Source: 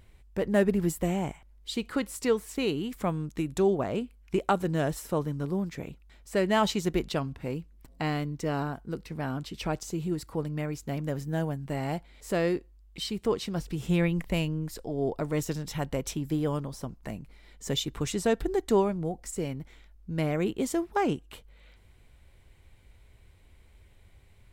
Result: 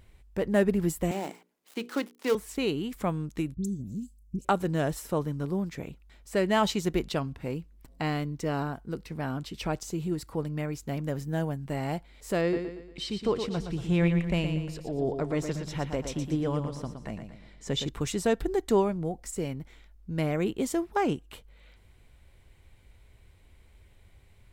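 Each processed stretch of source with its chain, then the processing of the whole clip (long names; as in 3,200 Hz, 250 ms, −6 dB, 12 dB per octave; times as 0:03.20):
0:01.11–0:02.35: gap after every zero crossing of 0.14 ms + high-pass filter 230 Hz 24 dB per octave + mains-hum notches 60/120/180/240/300/360/420/480 Hz
0:03.54–0:04.45: Chebyshev band-stop filter 220–6,000 Hz, order 3 + all-pass dispersion highs, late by 82 ms, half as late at 2,200 Hz
0:12.41–0:17.89: high-frequency loss of the air 56 metres + repeating echo 117 ms, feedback 42%, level −7.5 dB
whole clip: no processing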